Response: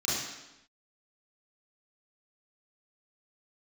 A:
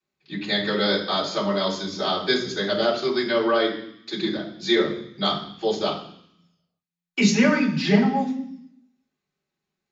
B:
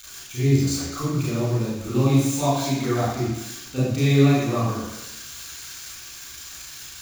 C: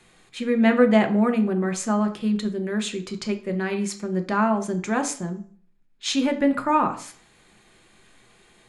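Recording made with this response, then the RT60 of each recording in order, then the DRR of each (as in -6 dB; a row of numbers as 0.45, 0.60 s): B; 0.65, 0.95, 0.45 s; -10.5, -8.5, 5.5 dB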